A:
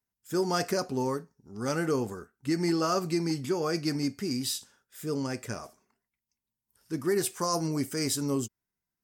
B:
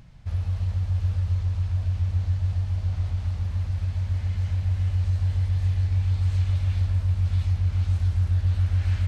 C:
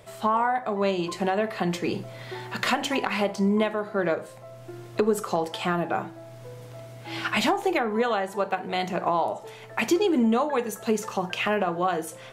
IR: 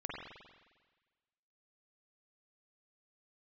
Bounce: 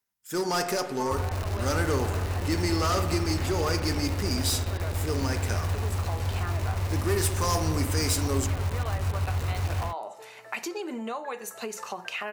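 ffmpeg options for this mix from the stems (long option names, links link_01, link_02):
-filter_complex "[0:a]lowshelf=frequency=390:gain=-11,asoftclip=type=hard:threshold=-29dB,volume=3dB,asplit=3[link_01][link_02][link_03];[link_02]volume=-4.5dB[link_04];[1:a]acrusher=bits=4:mix=0:aa=0.000001,dynaudnorm=framelen=180:gausssize=3:maxgain=11.5dB,adelay=850,volume=-13dB,asplit=2[link_05][link_06];[link_06]volume=-7dB[link_07];[2:a]highpass=frequency=850:poles=1,adelay=750,volume=0.5dB[link_08];[link_03]apad=whole_len=576678[link_09];[link_08][link_09]sidechaincompress=threshold=-41dB:ratio=8:attack=16:release=500[link_10];[link_05][link_10]amix=inputs=2:normalize=0,bandreject=frequency=3300:width=8,acompressor=threshold=-32dB:ratio=3,volume=0dB[link_11];[3:a]atrim=start_sample=2205[link_12];[link_04][link_07]amix=inputs=2:normalize=0[link_13];[link_13][link_12]afir=irnorm=-1:irlink=0[link_14];[link_01][link_11][link_14]amix=inputs=3:normalize=0"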